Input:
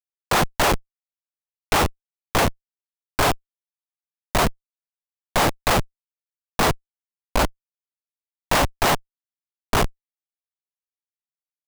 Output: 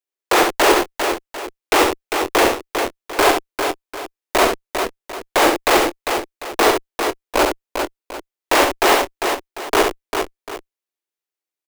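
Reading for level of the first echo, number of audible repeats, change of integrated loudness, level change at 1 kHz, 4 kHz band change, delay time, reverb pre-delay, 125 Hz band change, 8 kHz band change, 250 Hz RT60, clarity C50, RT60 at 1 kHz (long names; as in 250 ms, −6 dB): −5.0 dB, 3, +4.0 dB, +6.0 dB, +5.5 dB, 67 ms, no reverb audible, −12.0 dB, +4.5 dB, no reverb audible, no reverb audible, no reverb audible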